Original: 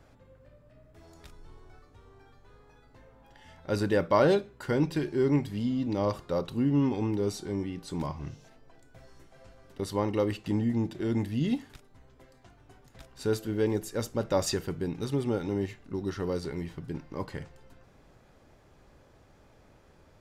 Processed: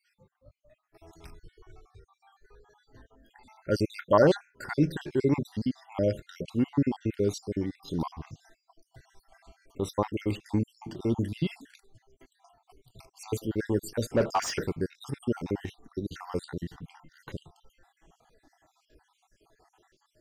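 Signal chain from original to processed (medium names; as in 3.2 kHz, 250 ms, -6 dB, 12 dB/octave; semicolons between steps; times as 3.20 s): random holes in the spectrogram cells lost 58%; spectral noise reduction 13 dB; 14.10–14.64 s: overdrive pedal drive 23 dB, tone 1.5 kHz, clips at -17.5 dBFS; trim +3 dB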